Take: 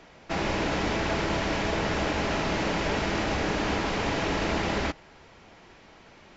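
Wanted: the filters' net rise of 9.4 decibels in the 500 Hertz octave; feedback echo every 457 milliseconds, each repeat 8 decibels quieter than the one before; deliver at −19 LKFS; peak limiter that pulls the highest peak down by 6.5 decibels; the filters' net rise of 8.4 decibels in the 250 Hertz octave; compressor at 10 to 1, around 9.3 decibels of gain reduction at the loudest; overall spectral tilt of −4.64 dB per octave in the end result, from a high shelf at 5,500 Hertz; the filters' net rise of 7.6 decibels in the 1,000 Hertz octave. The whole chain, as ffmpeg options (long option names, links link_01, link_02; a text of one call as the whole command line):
ffmpeg -i in.wav -af "equalizer=frequency=250:width_type=o:gain=8,equalizer=frequency=500:width_type=o:gain=8,equalizer=frequency=1000:width_type=o:gain=6.5,highshelf=frequency=5500:gain=-5.5,acompressor=threshold=-26dB:ratio=10,alimiter=limit=-23.5dB:level=0:latency=1,aecho=1:1:457|914|1371|1828|2285:0.398|0.159|0.0637|0.0255|0.0102,volume=13dB" out.wav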